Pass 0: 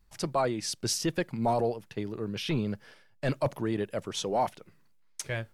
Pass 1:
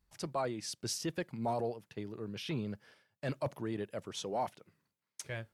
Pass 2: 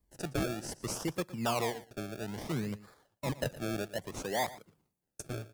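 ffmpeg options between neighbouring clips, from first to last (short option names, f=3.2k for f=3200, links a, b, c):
-af "highpass=42,volume=-7.5dB"
-filter_complex "[0:a]acrossover=split=160|5600[a][b][c];[b]acrusher=samples=30:mix=1:aa=0.000001:lfo=1:lforange=30:lforate=0.61[d];[a][d][c]amix=inputs=3:normalize=0,aecho=1:1:116:0.133,volume=2.5dB"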